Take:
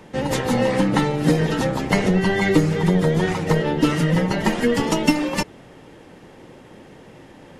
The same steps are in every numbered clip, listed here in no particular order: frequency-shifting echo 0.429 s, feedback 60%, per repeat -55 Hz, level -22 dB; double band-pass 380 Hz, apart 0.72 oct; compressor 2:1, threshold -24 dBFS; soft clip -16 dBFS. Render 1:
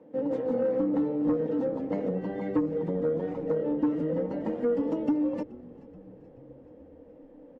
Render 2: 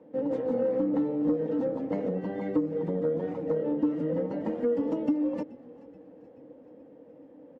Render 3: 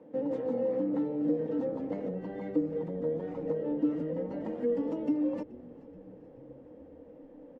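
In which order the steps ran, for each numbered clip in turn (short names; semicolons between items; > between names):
double band-pass > soft clip > compressor > frequency-shifting echo; frequency-shifting echo > double band-pass > compressor > soft clip; compressor > soft clip > double band-pass > frequency-shifting echo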